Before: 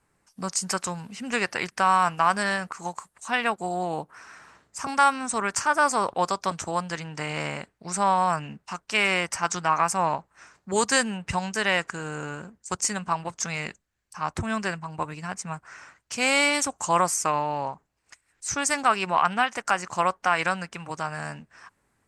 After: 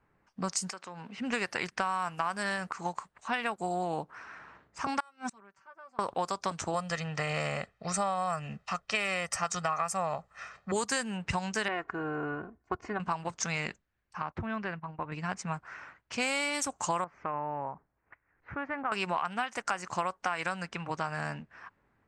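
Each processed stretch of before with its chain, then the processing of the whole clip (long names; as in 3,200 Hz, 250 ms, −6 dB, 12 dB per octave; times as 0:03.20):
0:00.70–0:01.18: high-pass filter 250 Hz + downward compressor 8 to 1, threshold −37 dBFS
0:05.00–0:05.99: comb filter 5.2 ms, depth 78% + gate with flip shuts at −22 dBFS, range −32 dB
0:06.74–0:10.72: comb filter 1.6 ms, depth 63% + one half of a high-frequency compander encoder only
0:11.68–0:13.00: low-pass filter 1,400 Hz + comb filter 2.8 ms, depth 61%
0:14.22–0:15.12: noise gate −39 dBFS, range −13 dB + low-pass filter 2,900 Hz + downward compressor 1.5 to 1, threshold −42 dBFS
0:17.04–0:18.92: inverse Chebyshev low-pass filter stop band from 10,000 Hz, stop band 80 dB + downward compressor 1.5 to 1, threshold −42 dBFS
whole clip: low-pass that shuts in the quiet parts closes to 2,300 Hz, open at −21.5 dBFS; downward compressor 6 to 1, threshold −28 dBFS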